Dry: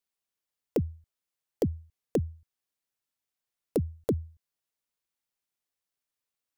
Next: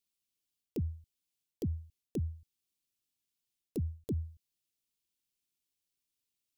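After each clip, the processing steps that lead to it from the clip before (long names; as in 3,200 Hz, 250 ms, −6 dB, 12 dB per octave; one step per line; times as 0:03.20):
flat-topped bell 980 Hz −12.5 dB 2.3 octaves
reversed playback
downward compressor 6 to 1, threshold −34 dBFS, peak gain reduction 10 dB
reversed playback
level +2 dB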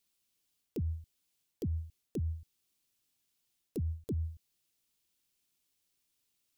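brickwall limiter −37 dBFS, peak gain reduction 9.5 dB
level +7.5 dB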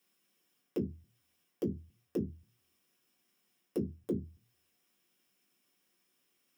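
downward compressor 1.5 to 1, threshold −50 dBFS, peak gain reduction 6.5 dB
convolution reverb RT60 0.15 s, pre-delay 3 ms, DRR −1.5 dB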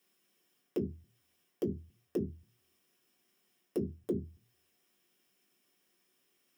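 brickwall limiter −27 dBFS, peak gain reduction 3.5 dB
hollow resonant body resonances 390/650/1,800/3,100 Hz, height 6 dB
level +1 dB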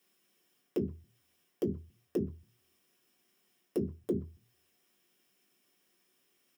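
far-end echo of a speakerphone 120 ms, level −27 dB
level +1.5 dB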